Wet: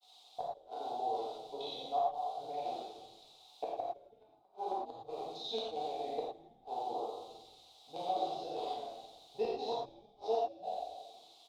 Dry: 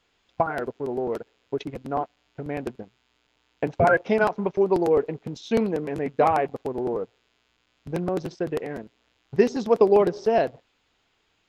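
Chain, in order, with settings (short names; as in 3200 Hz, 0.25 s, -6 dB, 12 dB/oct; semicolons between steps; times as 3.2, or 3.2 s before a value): spectral trails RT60 1.10 s; requantised 8-bit, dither triangular; double band-pass 1700 Hz, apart 2.3 oct; grains 90 ms, grains 22/s, spray 16 ms, pitch spread up and down by 0 st; flipped gate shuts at -24 dBFS, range -41 dB; on a send: frequency-shifting echo 0.164 s, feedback 41%, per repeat -130 Hz, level -20 dB; on the sum: non-linear reverb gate 0.14 s flat, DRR -4.5 dB; gain -3 dB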